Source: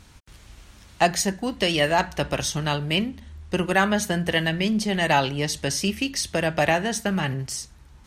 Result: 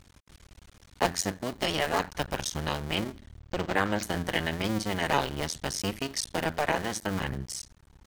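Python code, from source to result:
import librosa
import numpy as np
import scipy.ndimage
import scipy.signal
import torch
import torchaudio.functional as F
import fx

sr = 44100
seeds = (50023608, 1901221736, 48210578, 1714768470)

y = fx.cycle_switch(x, sr, every=2, mode='muted')
y = fx.notch(y, sr, hz=2700.0, q=16.0)
y = fx.resample_linear(y, sr, factor=4, at=(3.39, 4.03))
y = y * librosa.db_to_amplitude(-3.5)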